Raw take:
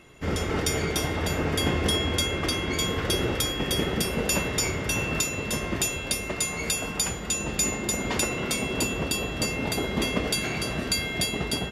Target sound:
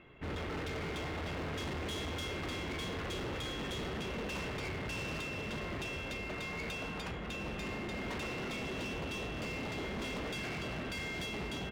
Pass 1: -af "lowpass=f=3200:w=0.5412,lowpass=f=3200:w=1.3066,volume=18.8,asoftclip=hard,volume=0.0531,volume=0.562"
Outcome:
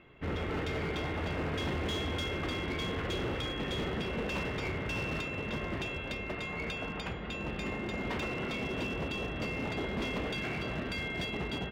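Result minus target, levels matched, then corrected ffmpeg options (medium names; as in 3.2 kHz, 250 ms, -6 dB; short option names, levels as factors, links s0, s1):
overload inside the chain: distortion -5 dB
-af "lowpass=f=3200:w=0.5412,lowpass=f=3200:w=1.3066,volume=39.8,asoftclip=hard,volume=0.0251,volume=0.562"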